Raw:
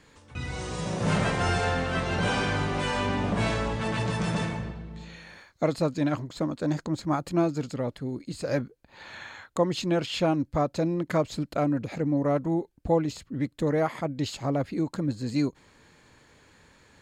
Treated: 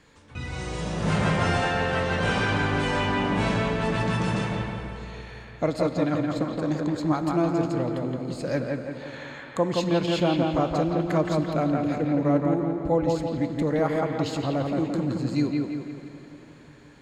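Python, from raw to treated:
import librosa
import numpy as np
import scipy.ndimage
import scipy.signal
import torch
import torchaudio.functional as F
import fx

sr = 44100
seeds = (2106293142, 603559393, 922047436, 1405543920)

y = fx.high_shelf(x, sr, hz=7600.0, db=-4.0)
y = fx.echo_bbd(y, sr, ms=170, stages=4096, feedback_pct=51, wet_db=-3.0)
y = fx.rev_plate(y, sr, seeds[0], rt60_s=4.2, hf_ratio=0.8, predelay_ms=0, drr_db=10.0)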